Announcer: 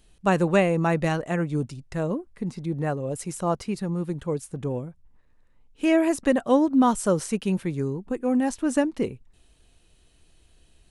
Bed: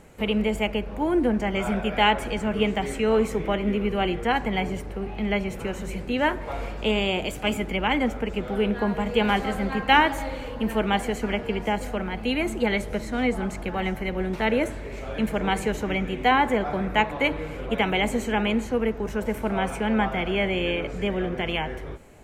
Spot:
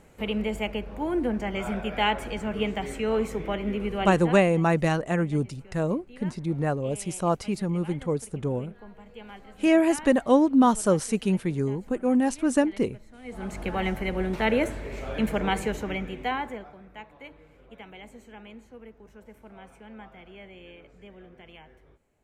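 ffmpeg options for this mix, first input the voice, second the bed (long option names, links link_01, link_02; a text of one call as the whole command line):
ffmpeg -i stem1.wav -i stem2.wav -filter_complex "[0:a]adelay=3800,volume=0.5dB[link_01];[1:a]volume=17.5dB,afade=type=out:start_time=4.04:duration=0.39:silence=0.125893,afade=type=in:start_time=13.24:duration=0.43:silence=0.0794328,afade=type=out:start_time=15.33:duration=1.42:silence=0.0841395[link_02];[link_01][link_02]amix=inputs=2:normalize=0" out.wav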